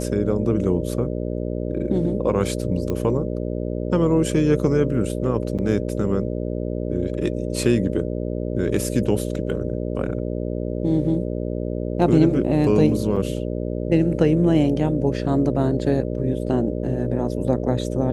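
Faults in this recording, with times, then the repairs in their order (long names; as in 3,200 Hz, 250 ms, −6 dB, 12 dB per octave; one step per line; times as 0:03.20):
mains buzz 60 Hz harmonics 10 −26 dBFS
0:02.90: click −14 dBFS
0:05.58–0:05.59: drop-out 7.1 ms
0:13.16–0:13.17: drop-out 5.9 ms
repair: click removal
hum removal 60 Hz, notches 10
repair the gap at 0:05.58, 7.1 ms
repair the gap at 0:13.16, 5.9 ms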